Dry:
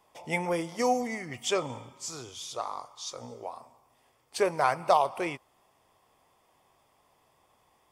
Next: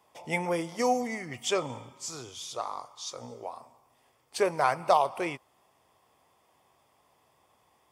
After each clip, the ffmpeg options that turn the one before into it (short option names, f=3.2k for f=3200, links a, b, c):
-af "highpass=57"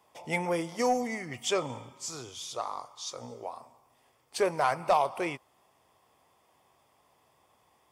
-af "asoftclip=type=tanh:threshold=-14.5dB"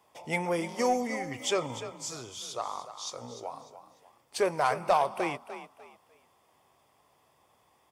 -filter_complex "[0:a]asplit=4[a][b][c][d];[b]adelay=298,afreqshift=34,volume=-12dB[e];[c]adelay=596,afreqshift=68,volume=-22.2dB[f];[d]adelay=894,afreqshift=102,volume=-32.3dB[g];[a][e][f][g]amix=inputs=4:normalize=0"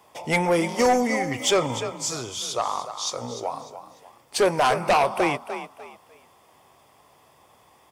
-af "aeval=exprs='0.2*sin(PI/2*2*val(0)/0.2)':c=same"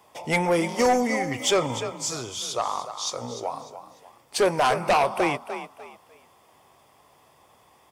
-af "volume=-1dB" -ar 48000 -c:a aac -b:a 192k